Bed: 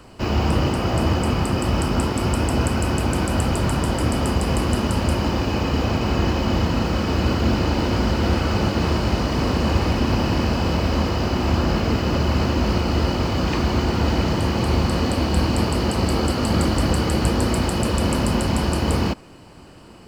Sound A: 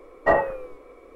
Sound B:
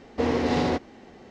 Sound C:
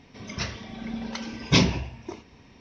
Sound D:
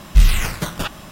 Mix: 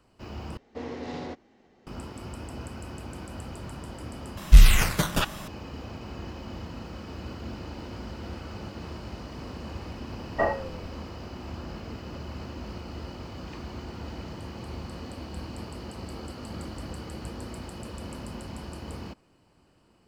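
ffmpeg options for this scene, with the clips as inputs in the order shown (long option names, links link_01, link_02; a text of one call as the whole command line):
ffmpeg -i bed.wav -i cue0.wav -i cue1.wav -i cue2.wav -i cue3.wav -filter_complex "[0:a]volume=-18.5dB,asplit=3[link_01][link_02][link_03];[link_01]atrim=end=0.574[link_04];[2:a]atrim=end=1.3,asetpts=PTS-STARTPTS,volume=-12.5dB[link_05];[link_02]atrim=start=1.866:end=4.374[link_06];[4:a]atrim=end=1.11,asetpts=PTS-STARTPTS,volume=-0.5dB[link_07];[link_03]atrim=start=5.476[link_08];[1:a]atrim=end=1.15,asetpts=PTS-STARTPTS,volume=-6.5dB,afade=type=in:duration=0.004:curve=hsin,afade=type=out:start_time=1.146:duration=0.004:curve=hsin,adelay=10120[link_09];[link_04][link_05]acrossfade=duration=0.004:curve1=hsin:curve2=hsin[link_10];[link_10][link_06]acrossfade=duration=0.004:curve1=hsin:curve2=hsin[link_11];[link_11][link_07]acrossfade=duration=0.004:curve1=hsin:curve2=hsin[link_12];[link_12][link_08]acrossfade=duration=0.004:curve1=hsin:curve2=hsin[link_13];[link_13][link_09]amix=inputs=2:normalize=0" out.wav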